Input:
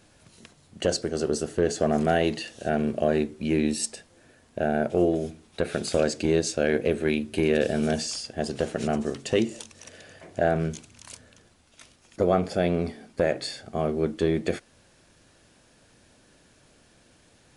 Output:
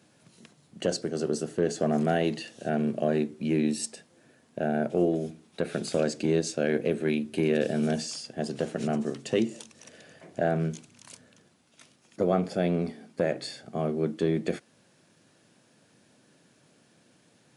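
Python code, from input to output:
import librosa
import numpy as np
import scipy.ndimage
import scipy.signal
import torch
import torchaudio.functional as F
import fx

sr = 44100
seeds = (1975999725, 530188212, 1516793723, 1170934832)

y = scipy.signal.sosfilt(scipy.signal.butter(4, 140.0, 'highpass', fs=sr, output='sos'), x)
y = fx.low_shelf(y, sr, hz=200.0, db=9.0)
y = F.gain(torch.from_numpy(y), -4.5).numpy()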